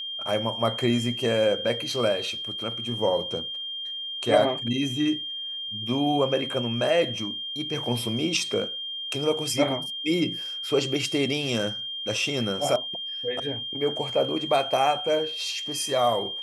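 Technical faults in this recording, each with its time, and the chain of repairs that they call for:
whine 3.2 kHz -31 dBFS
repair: band-stop 3.2 kHz, Q 30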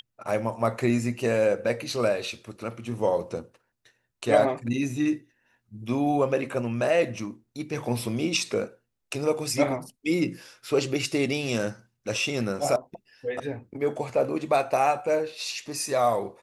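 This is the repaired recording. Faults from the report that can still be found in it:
nothing left

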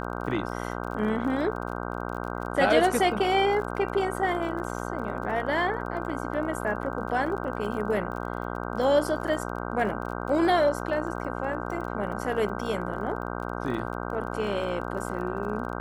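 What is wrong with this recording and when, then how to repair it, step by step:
buzz 60 Hz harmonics 26 -33 dBFS
crackle 32 per s -36 dBFS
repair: de-click; de-hum 60 Hz, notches 26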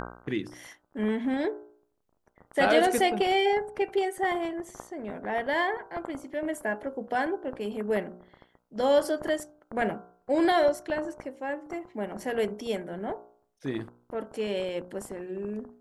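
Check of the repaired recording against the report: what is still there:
nothing left

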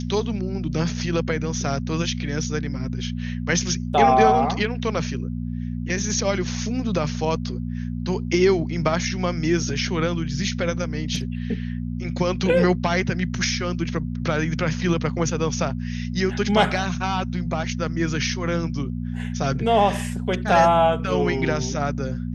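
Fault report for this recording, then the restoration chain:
hum 60 Hz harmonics 4 -28 dBFS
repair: de-hum 60 Hz, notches 4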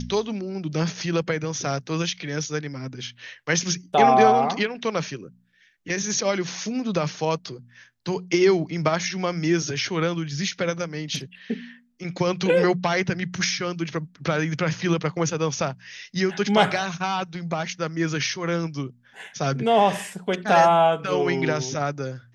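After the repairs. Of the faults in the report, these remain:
nothing left

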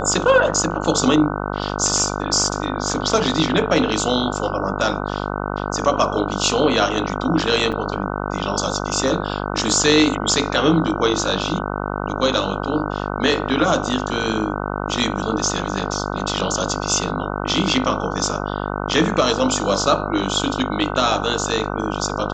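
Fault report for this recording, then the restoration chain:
buzz 50 Hz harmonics 30 -25 dBFS
7.72–7.73 s: dropout 6.8 ms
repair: de-hum 50 Hz, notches 30; interpolate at 7.72 s, 6.8 ms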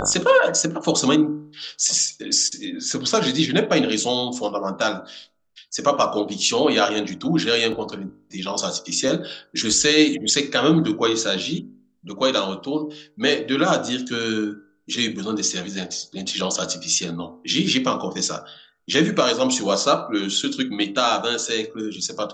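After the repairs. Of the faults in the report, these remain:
nothing left

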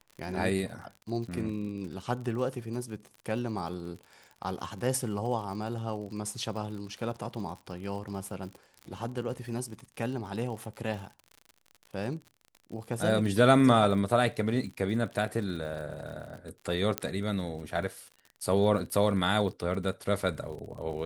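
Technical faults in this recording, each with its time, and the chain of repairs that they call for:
crackle 51 per s -39 dBFS
16.98 s: pop -11 dBFS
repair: de-click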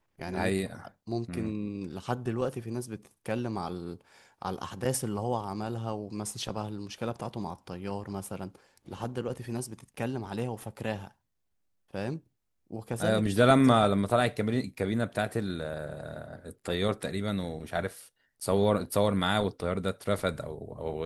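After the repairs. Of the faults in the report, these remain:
nothing left

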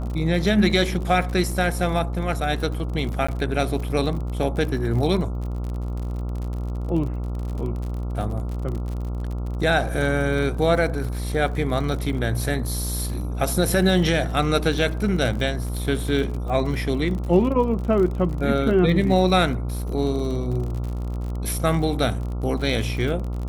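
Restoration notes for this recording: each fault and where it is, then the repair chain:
buzz 60 Hz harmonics 23 -27 dBFS
crackle 48 per s -30 dBFS
3.27–3.29 s: dropout 15 ms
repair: de-click; de-hum 60 Hz, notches 23; interpolate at 3.27 s, 15 ms

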